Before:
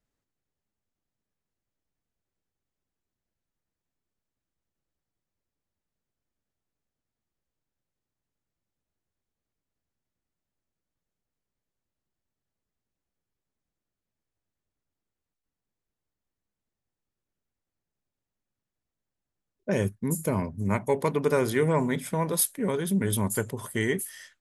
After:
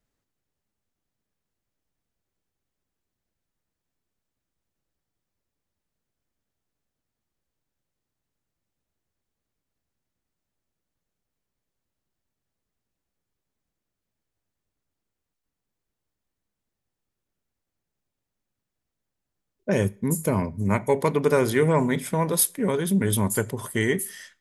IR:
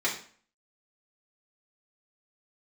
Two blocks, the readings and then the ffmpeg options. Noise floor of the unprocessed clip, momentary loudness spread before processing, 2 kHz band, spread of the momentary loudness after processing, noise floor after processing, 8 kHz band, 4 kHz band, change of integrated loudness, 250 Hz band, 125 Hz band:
under -85 dBFS, 6 LU, +3.5 dB, 6 LU, -85 dBFS, +3.5 dB, +3.5 dB, +3.5 dB, +3.5 dB, +3.5 dB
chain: -filter_complex "[0:a]asplit=2[s0][s1];[1:a]atrim=start_sample=2205,adelay=35[s2];[s1][s2]afir=irnorm=-1:irlink=0,volume=0.0237[s3];[s0][s3]amix=inputs=2:normalize=0,volume=1.5"

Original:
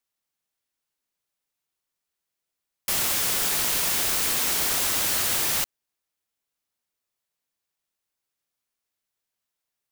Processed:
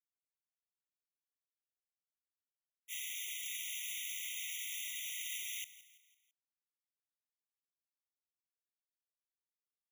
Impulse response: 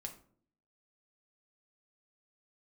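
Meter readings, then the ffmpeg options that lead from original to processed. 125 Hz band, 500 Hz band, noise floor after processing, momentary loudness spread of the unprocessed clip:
under -40 dB, under -40 dB, under -85 dBFS, 4 LU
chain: -filter_complex "[0:a]acrossover=split=120|5000[s0][s1][s2];[s2]acrusher=bits=4:dc=4:mix=0:aa=0.000001[s3];[s0][s1][s3]amix=inputs=3:normalize=0,equalizer=f=12000:t=o:w=0.36:g=3,agate=range=0.0224:threshold=0.178:ratio=3:detection=peak,asplit=5[s4][s5][s6][s7][s8];[s5]adelay=167,afreqshift=99,volume=0.119[s9];[s6]adelay=334,afreqshift=198,volume=0.0556[s10];[s7]adelay=501,afreqshift=297,volume=0.0263[s11];[s8]adelay=668,afreqshift=396,volume=0.0123[s12];[s4][s9][s10][s11][s12]amix=inputs=5:normalize=0,asplit=2[s13][s14];[s14]aeval=exprs='(mod(44.7*val(0)+1,2)-1)/44.7':c=same,volume=0.531[s15];[s13][s15]amix=inputs=2:normalize=0,afftfilt=real='re*eq(mod(floor(b*sr/1024/1900),2),1)':imag='im*eq(mod(floor(b*sr/1024/1900),2),1)':win_size=1024:overlap=0.75,volume=0.841"

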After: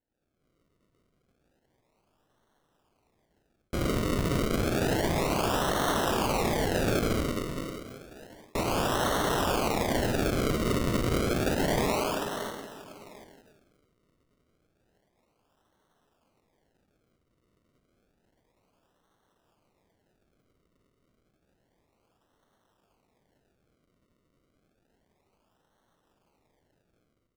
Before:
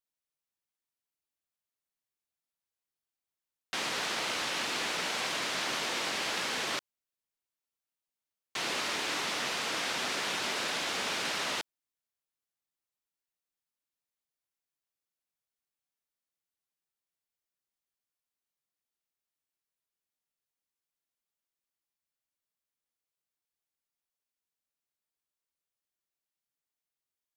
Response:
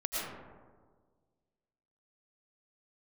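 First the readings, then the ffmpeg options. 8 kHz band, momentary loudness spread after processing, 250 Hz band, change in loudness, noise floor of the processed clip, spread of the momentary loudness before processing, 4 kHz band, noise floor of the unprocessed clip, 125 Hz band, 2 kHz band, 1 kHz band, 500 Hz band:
0.0 dB, 11 LU, +16.0 dB, +3.5 dB, -75 dBFS, 3 LU, -3.0 dB, under -85 dBFS, +23.0 dB, -1.0 dB, +6.5 dB, +12.5 dB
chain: -filter_complex "[1:a]atrim=start_sample=2205[s0];[0:a][s0]afir=irnorm=-1:irlink=0,dynaudnorm=f=150:g=5:m=3.98,asplit=2[s1][s2];[s2]adelay=742,lowpass=f=1100:p=1,volume=0.119,asplit=2[s3][s4];[s4]adelay=742,lowpass=f=1100:p=1,volume=0.26[s5];[s1][s3][s5]amix=inputs=3:normalize=0,acrusher=samples=36:mix=1:aa=0.000001:lfo=1:lforange=36:lforate=0.3,areverse,acompressor=threshold=0.0398:ratio=20,areverse,volume=1.68"

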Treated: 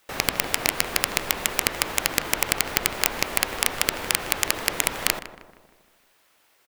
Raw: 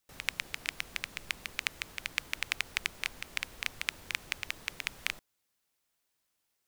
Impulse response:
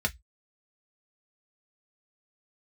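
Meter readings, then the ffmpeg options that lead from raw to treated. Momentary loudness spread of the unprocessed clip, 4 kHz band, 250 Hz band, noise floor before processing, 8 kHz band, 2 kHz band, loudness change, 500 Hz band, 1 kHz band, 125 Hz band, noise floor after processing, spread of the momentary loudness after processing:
4 LU, +11.0 dB, +20.0 dB, -80 dBFS, +18.5 dB, +8.5 dB, +12.5 dB, +22.5 dB, +18.0 dB, +16.0 dB, -63 dBFS, 2 LU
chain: -filter_complex "[0:a]bass=f=250:g=-11,treble=f=4000:g=-14,acrossover=split=5500[s0][s1];[s1]acompressor=threshold=0.00126:ratio=4:attack=1:release=60[s2];[s0][s2]amix=inputs=2:normalize=0,highshelf=f=5900:g=6.5,aeval=exprs='(mod(13.3*val(0)+1,2)-1)/13.3':c=same,apsyclip=25.1,asplit=2[s3][s4];[s4]adelay=156,lowpass=f=1700:p=1,volume=0.282,asplit=2[s5][s6];[s6]adelay=156,lowpass=f=1700:p=1,volume=0.54,asplit=2[s7][s8];[s8]adelay=156,lowpass=f=1700:p=1,volume=0.54,asplit=2[s9][s10];[s10]adelay=156,lowpass=f=1700:p=1,volume=0.54,asplit=2[s11][s12];[s12]adelay=156,lowpass=f=1700:p=1,volume=0.54,asplit=2[s13][s14];[s14]adelay=156,lowpass=f=1700:p=1,volume=0.54[s15];[s5][s7][s9][s11][s13][s15]amix=inputs=6:normalize=0[s16];[s3][s16]amix=inputs=2:normalize=0,volume=0.562"

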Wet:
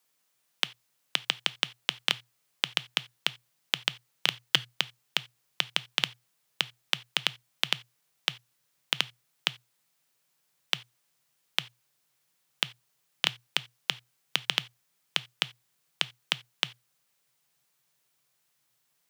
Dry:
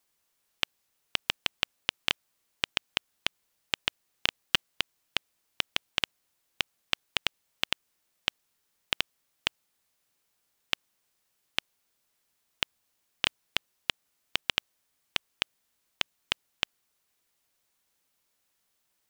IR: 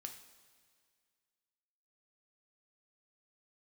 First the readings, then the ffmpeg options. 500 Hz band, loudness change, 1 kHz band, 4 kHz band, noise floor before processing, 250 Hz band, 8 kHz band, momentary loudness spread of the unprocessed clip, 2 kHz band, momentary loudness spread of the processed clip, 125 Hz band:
0.0 dB, +2.0 dB, +1.0 dB, +2.5 dB, -77 dBFS, 0.0 dB, +2.5 dB, 5 LU, +1.0 dB, 5 LU, +4.5 dB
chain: -filter_complex "[0:a]asubboost=boost=2.5:cutoff=56,afreqshift=120,asplit=2[s0][s1];[1:a]atrim=start_sample=2205,afade=t=out:st=0.14:d=0.01,atrim=end_sample=6615,lowshelf=f=470:g=-11[s2];[s1][s2]afir=irnorm=-1:irlink=0,volume=0.75[s3];[s0][s3]amix=inputs=2:normalize=0,volume=0.891"

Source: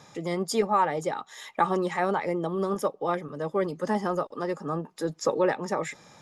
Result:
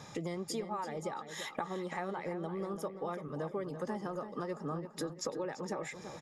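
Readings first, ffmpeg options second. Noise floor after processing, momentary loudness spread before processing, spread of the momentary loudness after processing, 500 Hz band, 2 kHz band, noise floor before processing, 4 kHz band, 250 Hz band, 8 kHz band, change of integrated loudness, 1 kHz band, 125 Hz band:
-51 dBFS, 8 LU, 2 LU, -11.0 dB, -10.5 dB, -56 dBFS, -6.5 dB, -9.0 dB, -6.5 dB, -11.0 dB, -13.0 dB, -7.5 dB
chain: -filter_complex "[0:a]lowshelf=f=150:g=6,acompressor=threshold=0.0158:ratio=10,asplit=2[s0][s1];[s1]adelay=338,lowpass=f=3800:p=1,volume=0.335,asplit=2[s2][s3];[s3]adelay=338,lowpass=f=3800:p=1,volume=0.38,asplit=2[s4][s5];[s5]adelay=338,lowpass=f=3800:p=1,volume=0.38,asplit=2[s6][s7];[s7]adelay=338,lowpass=f=3800:p=1,volume=0.38[s8];[s0][s2][s4][s6][s8]amix=inputs=5:normalize=0,volume=1.12"

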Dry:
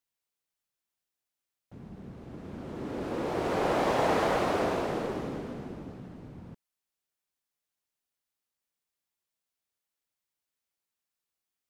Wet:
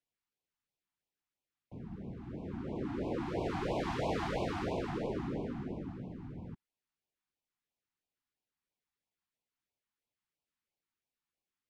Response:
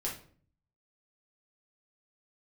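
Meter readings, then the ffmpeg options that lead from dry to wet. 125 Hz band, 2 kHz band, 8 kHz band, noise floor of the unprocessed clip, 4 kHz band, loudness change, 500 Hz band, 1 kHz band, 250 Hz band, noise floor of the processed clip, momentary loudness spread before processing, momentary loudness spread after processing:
-0.5 dB, -8.5 dB, -10.5 dB, under -85 dBFS, -7.0 dB, -8.0 dB, -8.0 dB, -9.5 dB, -3.0 dB, under -85 dBFS, 20 LU, 13 LU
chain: -filter_complex "[0:a]aemphasis=mode=reproduction:type=75fm,acrossover=split=160|3000[s0][s1][s2];[s1]acompressor=threshold=0.02:ratio=3[s3];[s0][s3][s2]amix=inputs=3:normalize=0,afftfilt=real='re*(1-between(b*sr/1024,470*pow(1600/470,0.5+0.5*sin(2*PI*3*pts/sr))/1.41,470*pow(1600/470,0.5+0.5*sin(2*PI*3*pts/sr))*1.41))':imag='im*(1-between(b*sr/1024,470*pow(1600/470,0.5+0.5*sin(2*PI*3*pts/sr))/1.41,470*pow(1600/470,0.5+0.5*sin(2*PI*3*pts/sr))*1.41))':win_size=1024:overlap=0.75"

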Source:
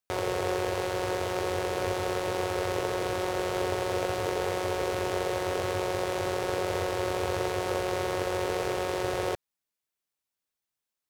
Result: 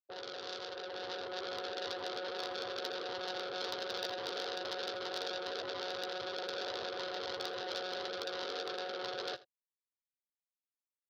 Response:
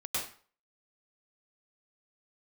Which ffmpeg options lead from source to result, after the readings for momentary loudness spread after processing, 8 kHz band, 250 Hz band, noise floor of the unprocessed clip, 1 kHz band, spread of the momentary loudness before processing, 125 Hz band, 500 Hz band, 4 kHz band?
4 LU, -13.5 dB, -15.0 dB, under -85 dBFS, -10.5 dB, 1 LU, -26.5 dB, -11.5 dB, -0.5 dB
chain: -filter_complex "[0:a]afftfilt=real='re*gte(hypot(re,im),0.1)':imag='im*gte(hypot(re,im),0.1)':win_size=1024:overlap=0.75,aresample=16000,asoftclip=type=tanh:threshold=0.0188,aresample=44100,lowpass=f=4900:w=0.5412,lowpass=f=4900:w=1.3066,asplit=2[s0][s1];[s1]adelay=15,volume=0.355[s2];[s0][s2]amix=inputs=2:normalize=0,alimiter=level_in=5.62:limit=0.0631:level=0:latency=1:release=41,volume=0.178,aexciter=amount=13.9:drive=7.2:freq=3700,highpass=180,tiltshelf=f=970:g=-8,dynaudnorm=f=220:g=9:m=1.78,asoftclip=type=hard:threshold=0.0398,asplit=2[s3][s4];[s4]aecho=0:1:81:0.112[s5];[s3][s5]amix=inputs=2:normalize=0,volume=1.19"

